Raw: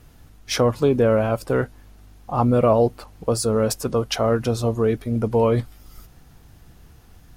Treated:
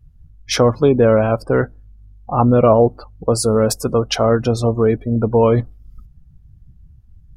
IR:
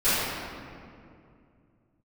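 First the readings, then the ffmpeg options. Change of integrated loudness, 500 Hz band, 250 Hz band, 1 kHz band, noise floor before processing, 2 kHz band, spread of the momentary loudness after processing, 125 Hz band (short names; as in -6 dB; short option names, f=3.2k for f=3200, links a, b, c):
+5.0 dB, +5.0 dB, +5.0 dB, +5.0 dB, -50 dBFS, +4.5 dB, 8 LU, +5.0 dB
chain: -af "afftdn=nr=29:nf=-38,volume=5dB"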